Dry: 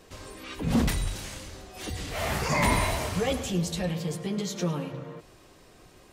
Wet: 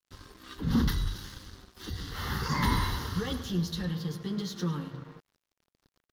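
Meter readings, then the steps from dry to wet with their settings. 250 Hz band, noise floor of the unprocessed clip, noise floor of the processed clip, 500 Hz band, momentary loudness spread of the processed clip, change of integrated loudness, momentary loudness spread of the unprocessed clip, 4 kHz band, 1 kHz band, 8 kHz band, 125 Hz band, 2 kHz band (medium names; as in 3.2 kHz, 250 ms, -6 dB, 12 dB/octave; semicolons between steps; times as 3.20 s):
-2.0 dB, -55 dBFS, under -85 dBFS, -9.5 dB, 20 LU, -3.0 dB, 17 LU, -2.5 dB, -4.5 dB, -9.5 dB, -1.5 dB, -6.0 dB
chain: static phaser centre 2.4 kHz, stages 6; crossover distortion -49.5 dBFS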